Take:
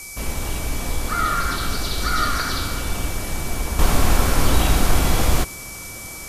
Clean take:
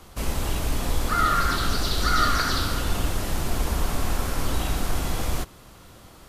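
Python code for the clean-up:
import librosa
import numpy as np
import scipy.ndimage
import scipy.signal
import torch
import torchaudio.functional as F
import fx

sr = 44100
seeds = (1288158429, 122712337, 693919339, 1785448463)

y = fx.notch(x, sr, hz=2300.0, q=30.0)
y = fx.noise_reduce(y, sr, print_start_s=5.54, print_end_s=6.04, reduce_db=13.0)
y = fx.gain(y, sr, db=fx.steps((0.0, 0.0), (3.79, -8.5)))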